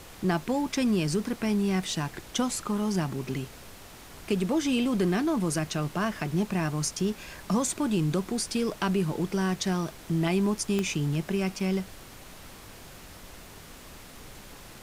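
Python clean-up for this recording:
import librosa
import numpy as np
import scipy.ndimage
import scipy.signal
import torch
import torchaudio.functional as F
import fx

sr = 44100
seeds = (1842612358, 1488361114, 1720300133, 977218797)

y = fx.fix_declick_ar(x, sr, threshold=10.0)
y = fx.noise_reduce(y, sr, print_start_s=3.63, print_end_s=4.13, reduce_db=27.0)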